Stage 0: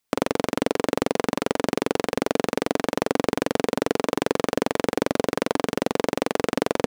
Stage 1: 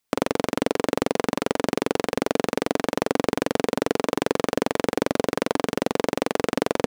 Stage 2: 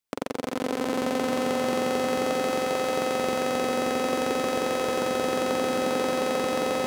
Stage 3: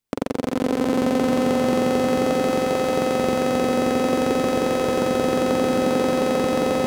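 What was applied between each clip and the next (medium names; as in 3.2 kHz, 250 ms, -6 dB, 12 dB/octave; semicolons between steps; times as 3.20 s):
no audible change
echo with a slow build-up 85 ms, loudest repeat 8, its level -4 dB; trim -8.5 dB
bass shelf 390 Hz +10 dB; trim +1.5 dB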